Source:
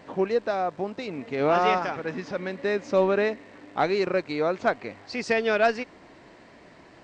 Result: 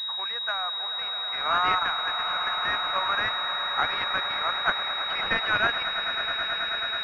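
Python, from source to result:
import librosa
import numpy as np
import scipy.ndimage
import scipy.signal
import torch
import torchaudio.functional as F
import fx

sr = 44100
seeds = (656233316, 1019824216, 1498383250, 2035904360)

p1 = scipy.signal.sosfilt(scipy.signal.butter(4, 1200.0, 'highpass', fs=sr, output='sos'), x)
p2 = fx.level_steps(p1, sr, step_db=12)
p3 = p1 + (p2 * 10.0 ** (-2.5 / 20.0))
p4 = fx.echo_swell(p3, sr, ms=108, loudest=8, wet_db=-12.5)
p5 = fx.pwm(p4, sr, carrier_hz=3800.0)
y = p5 * 10.0 ** (5.5 / 20.0)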